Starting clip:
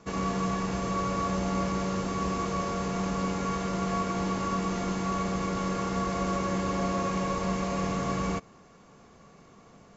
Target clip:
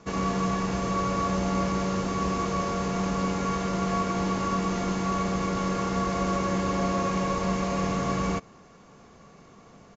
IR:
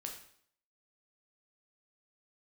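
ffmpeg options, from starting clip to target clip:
-af "aresample=16000,aresample=44100,volume=2.5dB"

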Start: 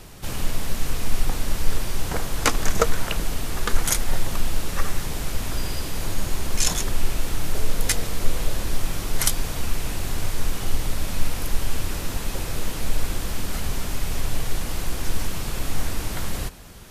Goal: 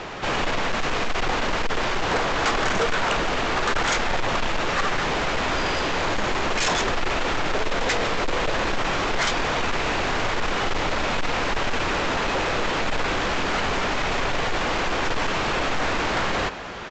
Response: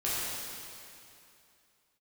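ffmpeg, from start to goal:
-filter_complex "[0:a]bass=frequency=250:gain=-4,treble=frequency=4000:gain=-9,asplit=2[link_01][link_02];[link_02]highpass=frequency=720:poles=1,volume=19dB,asoftclip=type=tanh:threshold=-3.5dB[link_03];[link_01][link_03]amix=inputs=2:normalize=0,lowpass=frequency=2000:poles=1,volume=-6dB,apsyclip=12.5dB,aresample=16000,asoftclip=type=tanh:threshold=-13dB,aresample=44100,volume=-6dB"

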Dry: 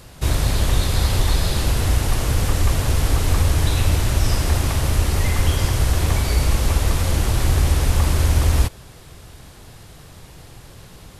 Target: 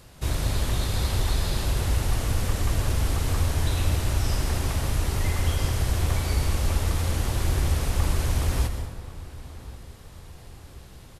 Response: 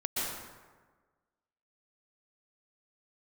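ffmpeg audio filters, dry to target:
-filter_complex "[0:a]asplit=2[link_01][link_02];[link_02]adelay=1083,lowpass=frequency=2000:poles=1,volume=-17dB,asplit=2[link_03][link_04];[link_04]adelay=1083,lowpass=frequency=2000:poles=1,volume=0.46,asplit=2[link_05][link_06];[link_06]adelay=1083,lowpass=frequency=2000:poles=1,volume=0.46,asplit=2[link_07][link_08];[link_08]adelay=1083,lowpass=frequency=2000:poles=1,volume=0.46[link_09];[link_01][link_03][link_05][link_07][link_09]amix=inputs=5:normalize=0,asplit=2[link_10][link_11];[1:a]atrim=start_sample=2205[link_12];[link_11][link_12]afir=irnorm=-1:irlink=0,volume=-11dB[link_13];[link_10][link_13]amix=inputs=2:normalize=0,volume=-9dB"

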